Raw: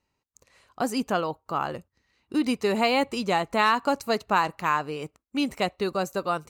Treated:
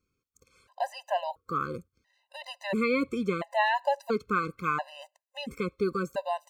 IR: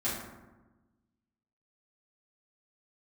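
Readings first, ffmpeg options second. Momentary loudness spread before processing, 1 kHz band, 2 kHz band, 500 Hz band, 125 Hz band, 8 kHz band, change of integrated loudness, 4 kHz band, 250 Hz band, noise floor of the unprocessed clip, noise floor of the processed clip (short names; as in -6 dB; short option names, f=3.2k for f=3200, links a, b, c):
9 LU, -5.0 dB, -3.5 dB, -3.5 dB, -2.0 dB, under -10 dB, -4.0 dB, -8.5 dB, -5.5 dB, -80 dBFS, -84 dBFS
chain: -filter_complex "[0:a]acrossover=split=3100[a][b];[b]acompressor=threshold=-48dB:ratio=4:attack=1:release=60[c];[a][c]amix=inputs=2:normalize=0,afftfilt=real='re*gt(sin(2*PI*0.73*pts/sr)*(1-2*mod(floor(b*sr/1024/520),2)),0)':imag='im*gt(sin(2*PI*0.73*pts/sr)*(1-2*mod(floor(b*sr/1024/520),2)),0)':win_size=1024:overlap=0.75"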